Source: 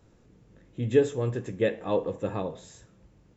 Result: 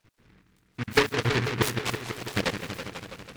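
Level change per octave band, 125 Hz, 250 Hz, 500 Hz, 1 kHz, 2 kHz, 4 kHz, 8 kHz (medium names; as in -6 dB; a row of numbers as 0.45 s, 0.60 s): +2.0 dB, 0.0 dB, -4.0 dB, +6.5 dB, +12.5 dB, +15.5 dB, no reading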